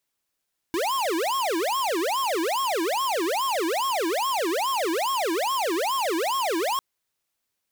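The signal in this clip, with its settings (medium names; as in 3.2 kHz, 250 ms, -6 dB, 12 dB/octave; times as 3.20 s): siren wail 320–1090 Hz 2.4 per s square -25 dBFS 6.05 s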